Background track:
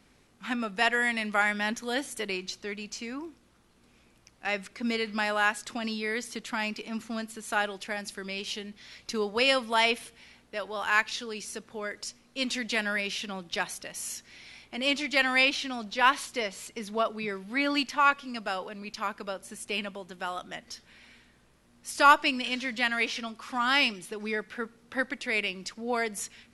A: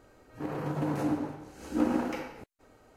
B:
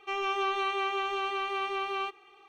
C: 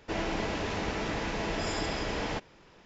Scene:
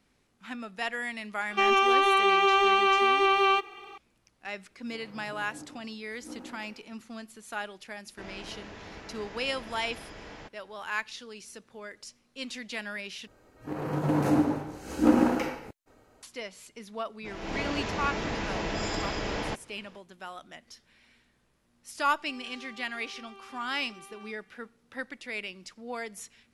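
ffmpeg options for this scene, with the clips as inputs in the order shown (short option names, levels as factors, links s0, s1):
-filter_complex "[2:a]asplit=2[s0][s1];[1:a]asplit=2[s2][s3];[3:a]asplit=2[s4][s5];[0:a]volume=0.422[s6];[s0]alimiter=level_in=17.8:limit=0.891:release=50:level=0:latency=1[s7];[s4]equalizer=f=1600:t=o:w=0.77:g=3[s8];[s3]dynaudnorm=f=110:g=13:m=2.51[s9];[s5]dynaudnorm=f=200:g=3:m=5.31[s10];[s1]acompressor=threshold=0.0224:ratio=6:attack=3.2:release=140:knee=1:detection=peak[s11];[s6]asplit=2[s12][s13];[s12]atrim=end=13.274[s14];[s9]atrim=end=2.96,asetpts=PTS-STARTPTS,volume=0.841[s15];[s13]atrim=start=16.226[s16];[s7]atrim=end=2.48,asetpts=PTS-STARTPTS,volume=0.188,afade=t=in:d=0.004:c=hsin,afade=t=out:st=2.476:d=0.004:c=hsin,adelay=1500[s17];[s2]atrim=end=2.96,asetpts=PTS-STARTPTS,volume=0.141,afade=t=in:d=0.004:c=hsin,afade=t=out:st=2.956:d=0.004:c=hsin,adelay=4500[s18];[s8]atrim=end=2.85,asetpts=PTS-STARTPTS,volume=0.224,afade=t=in:d=0.004:c=hsin,afade=t=out:st=2.846:d=0.004:c=hsin,adelay=8090[s19];[s10]atrim=end=2.85,asetpts=PTS-STARTPTS,volume=0.2,afade=t=in:d=0.004:c=hsin,afade=t=out:st=2.846:d=0.004:c=hsin,adelay=756756S[s20];[s11]atrim=end=2.48,asetpts=PTS-STARTPTS,volume=0.2,afade=t=in:d=0.004:c=hsin,afade=t=out:st=2.476:d=0.004:c=hsin,adelay=22210[s21];[s14][s15]acrossfade=d=0.004:c1=hsin:c2=hsin[s22];[s22][s16]acrossfade=d=0.004:c1=hsin:c2=hsin[s23];[s23][s17][s18][s19][s20][s21]amix=inputs=6:normalize=0"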